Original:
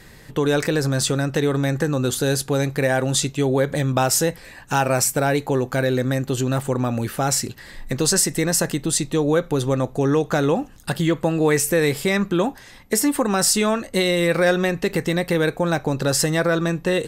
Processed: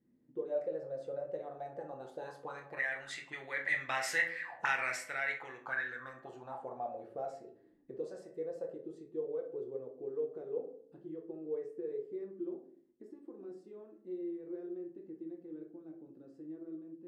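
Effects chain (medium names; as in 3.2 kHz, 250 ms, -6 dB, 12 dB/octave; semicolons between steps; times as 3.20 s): Doppler pass-by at 4.29 s, 7 m/s, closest 3.4 m; auto-wah 250–2000 Hz, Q 8.6, up, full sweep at -25.5 dBFS; de-hum 56.09 Hz, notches 33; on a send: reverberation, pre-delay 6 ms, DRR 2 dB; on the sum: trim +7.5 dB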